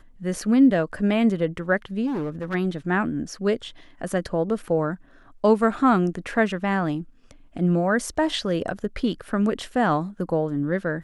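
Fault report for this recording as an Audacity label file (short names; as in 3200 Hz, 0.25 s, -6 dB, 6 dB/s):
2.060000	2.550000	clipped -24 dBFS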